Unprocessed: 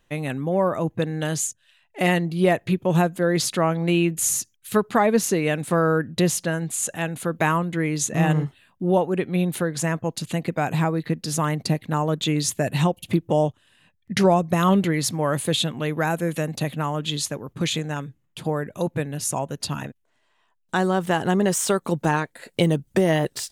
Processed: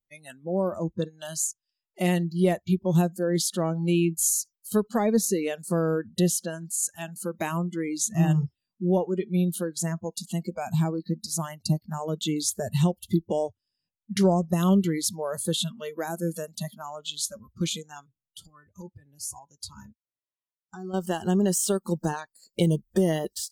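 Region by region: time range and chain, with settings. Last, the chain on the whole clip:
18.46–20.94 high shelf 2600 Hz -2.5 dB + compressor 12:1, threshold -26 dBFS + notch comb 230 Hz
whole clip: spectral noise reduction 26 dB; bell 1400 Hz -12 dB 2.4 oct

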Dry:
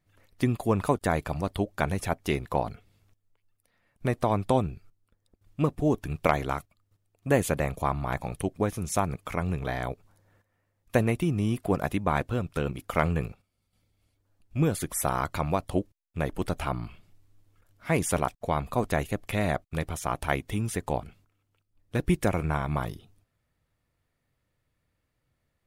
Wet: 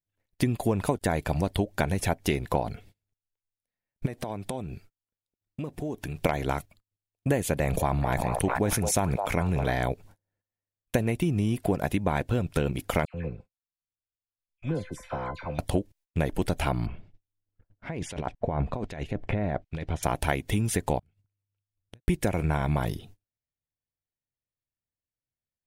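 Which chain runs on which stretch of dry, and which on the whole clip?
4.06–6.17 compressor 16:1, threshold -35 dBFS + low shelf 91 Hz -9.5 dB
7.59–9.75 delay with a stepping band-pass 0.213 s, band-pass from 700 Hz, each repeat 0.7 oct, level -6.5 dB + sustainer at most 40 dB/s
13.05–15.59 treble ducked by the level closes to 3000 Hz, closed at -26.5 dBFS + resonator 510 Hz, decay 0.24 s, mix 80% + dispersion lows, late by 88 ms, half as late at 1600 Hz
16.86–20.03 negative-ratio compressor -31 dBFS + harmonic tremolo 1.2 Hz, crossover 2200 Hz + tape spacing loss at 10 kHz 28 dB
20.99–22.08 compressor 3:1, threshold -39 dBFS + bell 100 Hz +13 dB 0.81 oct + flipped gate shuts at -40 dBFS, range -32 dB
whole clip: gate -55 dBFS, range -30 dB; bell 1200 Hz -10 dB 0.31 oct; compressor, threshold -30 dBFS; gain +8 dB

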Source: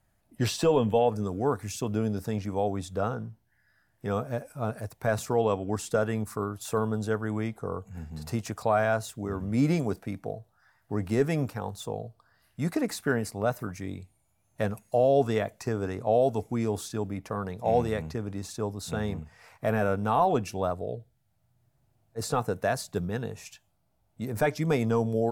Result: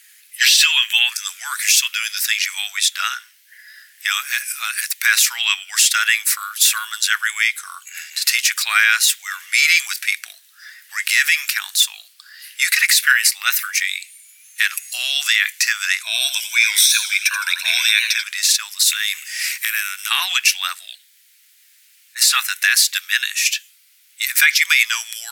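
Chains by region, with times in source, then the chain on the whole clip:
16.03–18.24 ripple EQ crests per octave 1.6, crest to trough 15 dB + warbling echo 85 ms, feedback 52%, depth 169 cents, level -11 dB
18.83–20.11 HPF 320 Hz 6 dB/oct + high shelf 5000 Hz +11.5 dB + compressor, threshold -36 dBFS
whole clip: steep high-pass 1900 Hz 36 dB/oct; dynamic EQ 7800 Hz, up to -5 dB, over -54 dBFS, Q 0.99; maximiser +33 dB; gain -1.5 dB

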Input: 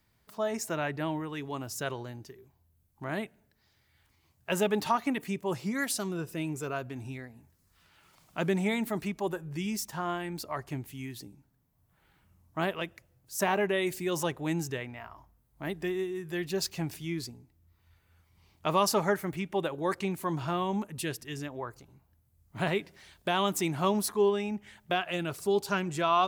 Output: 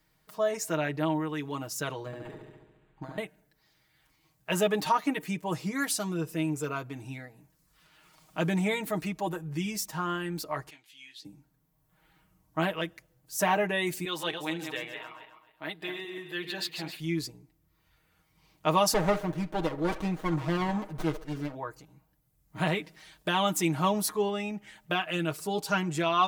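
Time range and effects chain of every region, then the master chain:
2.06–3.18 negative-ratio compressor -40 dBFS, ratio -0.5 + flutter echo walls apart 12 m, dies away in 1.2 s + decimation joined by straight lines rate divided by 8×
10.7–11.25 band-pass 3500 Hz, Q 1.8 + doubler 18 ms -7.5 dB
14.05–17 regenerating reverse delay 0.133 s, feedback 46%, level -7 dB + HPF 710 Hz 6 dB/oct + resonant high shelf 4800 Hz -6.5 dB, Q 3
18.94–21.55 band-limited delay 65 ms, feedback 54%, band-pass 730 Hz, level -13 dB + running maximum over 17 samples
whole clip: bell 110 Hz -6.5 dB 0.56 oct; comb 6.4 ms, depth 79%

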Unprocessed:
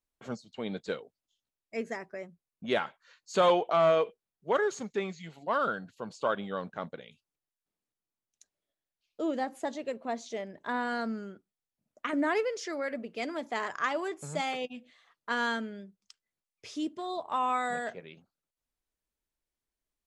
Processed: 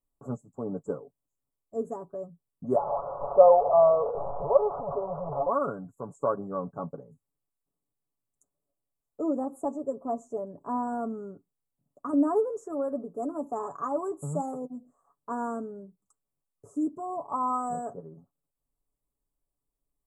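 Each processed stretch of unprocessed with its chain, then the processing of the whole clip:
2.76–5.49 delta modulation 16 kbps, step -24.5 dBFS + Butterworth band-stop 2000 Hz, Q 0.64 + resonant low shelf 410 Hz -12 dB, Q 3
whole clip: Chebyshev band-stop 1200–7600 Hz, order 4; low shelf 250 Hz +8 dB; comb 7.1 ms, depth 56%

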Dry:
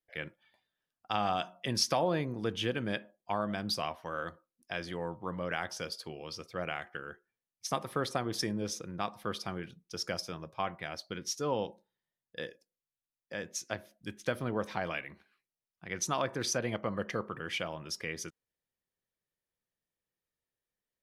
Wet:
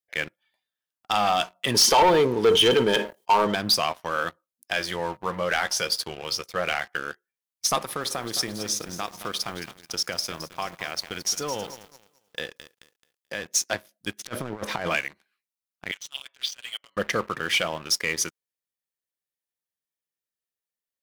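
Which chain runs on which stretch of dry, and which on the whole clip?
1.74–3.55 small resonant body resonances 430/900/3100 Hz, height 16 dB + sustainer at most 140 dB/s
4.74–6.98 bell 270 Hz -11.5 dB 0.26 oct + doubler 15 ms -10 dB
7.79–13.52 compressor 2.5:1, threshold -39 dBFS + lo-fi delay 0.217 s, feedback 55%, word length 10-bit, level -11 dB
14.18–14.96 high shelf 2600 Hz -7 dB + negative-ratio compressor -38 dBFS, ratio -0.5
15.91–16.97 comb 7.1 ms, depth 70% + negative-ratio compressor -33 dBFS + band-pass 3100 Hz, Q 5.9
whole clip: tilt +2 dB/oct; sample leveller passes 3

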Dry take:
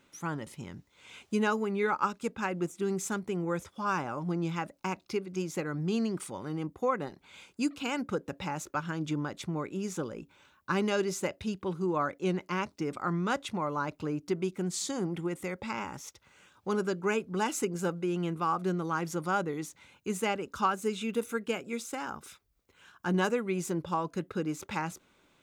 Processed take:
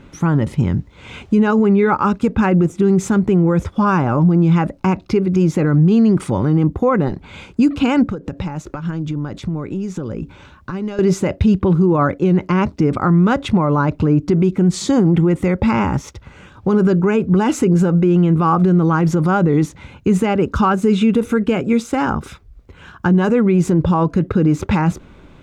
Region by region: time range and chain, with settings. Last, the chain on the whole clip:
8.06–10.99 bell 5800 Hz +4 dB 1.6 oct + compressor 10:1, threshold -44 dBFS
whole clip: RIAA curve playback; maximiser +23 dB; gain -5.5 dB

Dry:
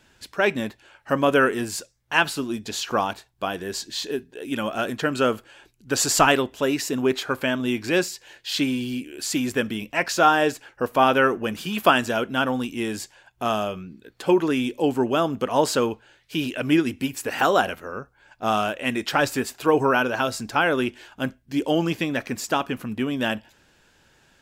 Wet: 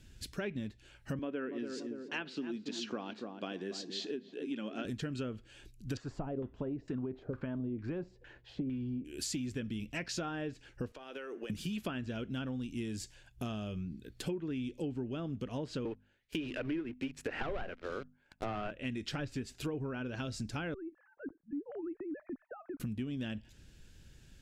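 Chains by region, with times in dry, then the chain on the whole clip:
1.19–4.85 HPF 230 Hz 24 dB/oct + air absorption 140 m + darkening echo 0.285 s, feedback 39%, low-pass 840 Hz, level -9 dB
5.97–9.05 high shelf 4300 Hz +11 dB + compressor 4:1, threshold -19 dBFS + LFO low-pass saw down 2.2 Hz 500–1500 Hz
10.92–11.5 HPF 360 Hz 24 dB/oct + compressor 20:1, threshold -30 dBFS + air absorption 65 m
15.85–18.71 three-band isolator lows -19 dB, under 350 Hz, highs -14 dB, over 2300 Hz + sample leveller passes 3 + notches 50/100/150/200/250 Hz
20.74–22.8 sine-wave speech + compressor 2.5:1, threshold -36 dBFS + steep low-pass 1600 Hz
whole clip: treble ducked by the level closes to 2400 Hz, closed at -16 dBFS; passive tone stack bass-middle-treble 10-0-1; compressor 6:1, threshold -53 dBFS; gain +17.5 dB

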